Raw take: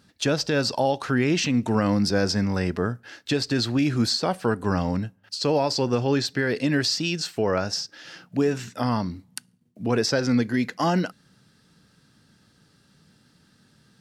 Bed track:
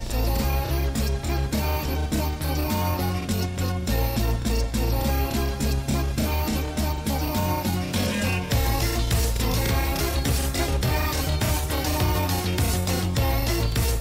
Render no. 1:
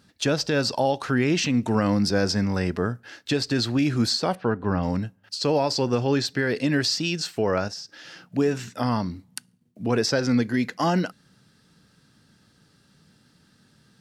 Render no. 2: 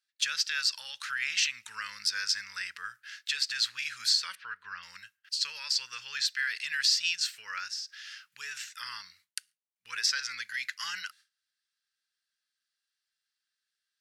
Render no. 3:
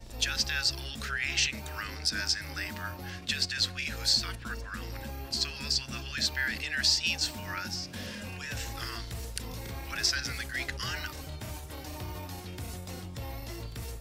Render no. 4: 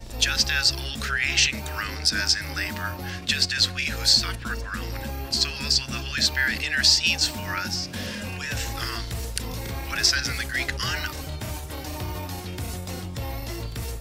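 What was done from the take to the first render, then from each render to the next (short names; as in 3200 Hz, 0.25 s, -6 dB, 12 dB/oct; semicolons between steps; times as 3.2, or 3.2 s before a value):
4.35–4.83 air absorption 290 m; 7.68–8.22 compressor 2:1, threshold -39 dBFS
inverse Chebyshev high-pass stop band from 770 Hz, stop band 40 dB; gate with hold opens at -51 dBFS
add bed track -16.5 dB
gain +7.5 dB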